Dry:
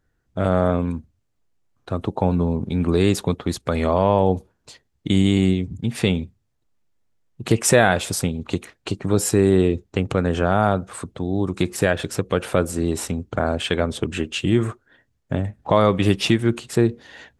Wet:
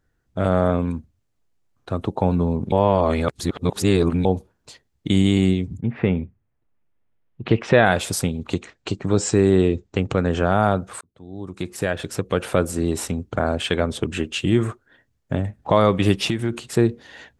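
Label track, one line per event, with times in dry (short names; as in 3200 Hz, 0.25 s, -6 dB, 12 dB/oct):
2.720000	4.250000	reverse
5.790000	7.850000	LPF 2000 Hz -> 3800 Hz 24 dB/oct
8.540000	10.400000	steep low-pass 8200 Hz 72 dB/oct
11.010000	12.440000	fade in
16.150000	16.620000	compressor, threshold -17 dBFS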